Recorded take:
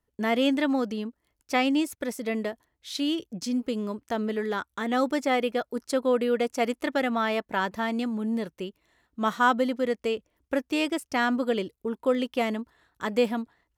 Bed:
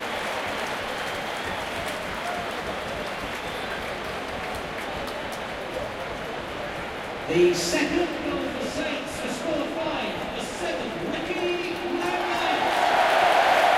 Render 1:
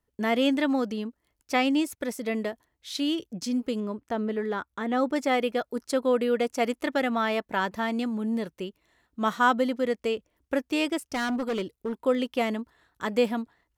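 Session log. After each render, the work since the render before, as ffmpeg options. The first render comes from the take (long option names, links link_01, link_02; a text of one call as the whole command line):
ffmpeg -i in.wav -filter_complex "[0:a]asettb=1/sr,asplit=3[link_01][link_02][link_03];[link_01]atrim=end=3.804[link_04];[link_02]atrim=start=3.8:end=5.16,asetpts=PTS-STARTPTS,afade=type=in:duration=0.004:curve=qsin,afade=type=out:start_time=1.356:duration=0.004:curve=qsin,highshelf=frequency=2900:gain=-10[link_05];[link_03]atrim=start=5.156[link_06];[link_04][link_05]acrossfade=duration=0.004:curve1=hsin:curve2=qsin[link_07];[link_07][link_06]acrossfade=duration=0.004:curve1=qsin:curve2=hsin,asettb=1/sr,asplit=3[link_08][link_09][link_10];[link_08]atrim=end=11.124[link_11];[link_09]atrim=start=11.12:end=11.96,asetpts=PTS-STARTPTS,afade=type=in:duration=0.004:curve=qsin,afade=type=out:start_time=0.836:duration=0.004:curve=qsin,asoftclip=type=hard:threshold=-25dB[link_12];[link_10]atrim=start=11.956[link_13];[link_11][link_12]acrossfade=duration=0.004:curve1=hsin:curve2=qsin[link_14];[link_14][link_13]acrossfade=duration=0.004:curve1=qsin:curve2=hsin" out.wav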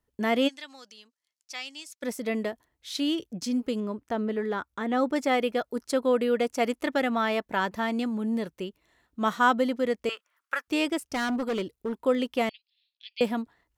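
ffmpeg -i in.wav -filter_complex "[0:a]asplit=3[link_01][link_02][link_03];[link_01]afade=type=out:start_time=0.47:duration=0.02[link_04];[link_02]bandpass=frequency=5500:width_type=q:width=1.3,afade=type=in:start_time=0.47:duration=0.02,afade=type=out:start_time=2.02:duration=0.02[link_05];[link_03]afade=type=in:start_time=2.02:duration=0.02[link_06];[link_04][link_05][link_06]amix=inputs=3:normalize=0,asettb=1/sr,asplit=3[link_07][link_08][link_09];[link_07]atrim=end=10.094[link_10];[link_08]atrim=start=10.09:end=10.68,asetpts=PTS-STARTPTS,afade=type=in:duration=0.004:curve=qsin,afade=type=out:start_time=0.586:duration=0.004:curve=qsin,highpass=frequency=1300:width_type=q:width=4.1[link_11];[link_09]atrim=start=10.676[link_12];[link_10][link_11]acrossfade=duration=0.004:curve1=hsin:curve2=qsin[link_13];[link_13][link_12]acrossfade=duration=0.004:curve1=qsin:curve2=hsin,asettb=1/sr,asplit=3[link_14][link_15][link_16];[link_14]atrim=end=12.494[link_17];[link_15]atrim=start=12.49:end=13.21,asetpts=PTS-STARTPTS,afade=type=in:duration=0.004:curve=qsin,afade=type=out:start_time=0.716:duration=0.004:curve=qsin,asuperpass=centerf=3500:order=12:qfactor=1.3[link_18];[link_16]atrim=start=13.206[link_19];[link_17][link_18]acrossfade=duration=0.004:curve1=hsin:curve2=qsin[link_20];[link_20][link_19]acrossfade=duration=0.004:curve1=qsin:curve2=hsin" out.wav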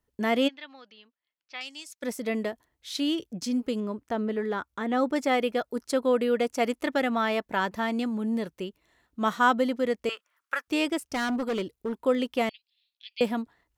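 ffmpeg -i in.wav -filter_complex "[0:a]asettb=1/sr,asplit=3[link_01][link_02][link_03];[link_01]atrim=end=0.484[link_04];[link_02]atrim=start=0.48:end=1.61,asetpts=PTS-STARTPTS,afade=type=in:duration=0.004:curve=qsin,afade=type=out:start_time=1.126:duration=0.004:curve=qsin,lowpass=frequency=3500:width=0.5412,lowpass=frequency=3500:width=1.3066[link_05];[link_03]atrim=start=1.606[link_06];[link_04][link_05]acrossfade=duration=0.004:curve1=hsin:curve2=qsin[link_07];[link_07][link_06]acrossfade=duration=0.004:curve1=qsin:curve2=hsin" out.wav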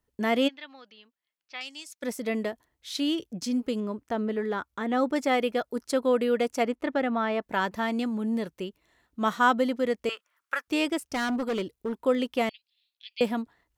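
ffmpeg -i in.wav -filter_complex "[0:a]asplit=3[link_01][link_02][link_03];[link_01]afade=type=out:start_time=6.62:duration=0.02[link_04];[link_02]lowpass=frequency=1700:poles=1,afade=type=in:start_time=6.62:duration=0.02,afade=type=out:start_time=7.41:duration=0.02[link_05];[link_03]afade=type=in:start_time=7.41:duration=0.02[link_06];[link_04][link_05][link_06]amix=inputs=3:normalize=0" out.wav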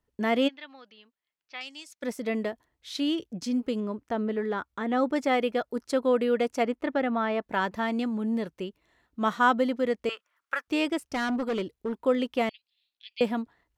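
ffmpeg -i in.wav -af "highshelf=frequency=6300:gain=-8" out.wav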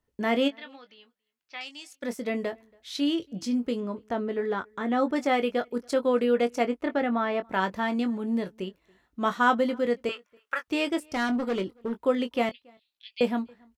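ffmpeg -i in.wav -filter_complex "[0:a]asplit=2[link_01][link_02];[link_02]adelay=21,volume=-9dB[link_03];[link_01][link_03]amix=inputs=2:normalize=0,asplit=2[link_04][link_05];[link_05]adelay=279.9,volume=-29dB,highshelf=frequency=4000:gain=-6.3[link_06];[link_04][link_06]amix=inputs=2:normalize=0" out.wav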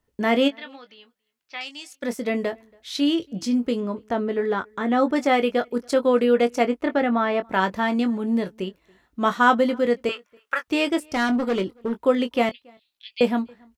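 ffmpeg -i in.wav -af "volume=5dB" out.wav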